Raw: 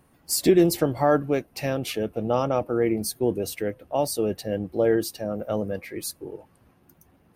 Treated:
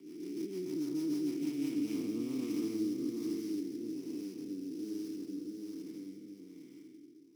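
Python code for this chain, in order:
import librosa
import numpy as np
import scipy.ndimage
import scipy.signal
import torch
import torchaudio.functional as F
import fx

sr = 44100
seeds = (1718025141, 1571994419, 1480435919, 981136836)

p1 = fx.spec_blur(x, sr, span_ms=535.0)
p2 = fx.doppler_pass(p1, sr, speed_mps=26, closest_m=12.0, pass_at_s=1.96)
p3 = scipy.signal.sosfilt(scipy.signal.butter(4, 110.0, 'highpass', fs=sr, output='sos'), p2)
p4 = fx.rider(p3, sr, range_db=4, speed_s=0.5)
p5 = p3 + (p4 * librosa.db_to_amplitude(-1.0))
p6 = fx.vowel_filter(p5, sr, vowel='u')
p7 = fx.fixed_phaser(p6, sr, hz=2000.0, stages=4)
p8 = fx.sample_hold(p7, sr, seeds[0], rate_hz=5500.0, jitter_pct=20)
p9 = p8 + fx.echo_single(p8, sr, ms=664, db=-4.0, dry=0)
p10 = fx.rotary_switch(p9, sr, hz=6.7, then_hz=1.2, switch_at_s=1.26)
p11 = fx.band_squash(p10, sr, depth_pct=40)
y = p11 * librosa.db_to_amplitude(5.0)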